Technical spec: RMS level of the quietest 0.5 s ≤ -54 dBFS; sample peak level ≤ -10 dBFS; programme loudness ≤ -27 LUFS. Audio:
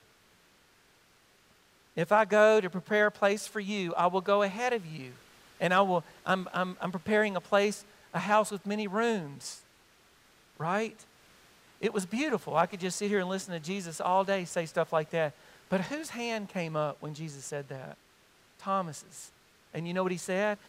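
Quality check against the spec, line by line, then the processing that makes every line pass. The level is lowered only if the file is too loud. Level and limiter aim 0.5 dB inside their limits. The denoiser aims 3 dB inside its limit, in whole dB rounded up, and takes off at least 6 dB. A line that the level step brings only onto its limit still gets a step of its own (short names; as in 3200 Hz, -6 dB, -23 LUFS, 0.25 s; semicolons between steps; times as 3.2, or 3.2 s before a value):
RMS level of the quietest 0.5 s -64 dBFS: OK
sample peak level -10.5 dBFS: OK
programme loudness -30.0 LUFS: OK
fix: none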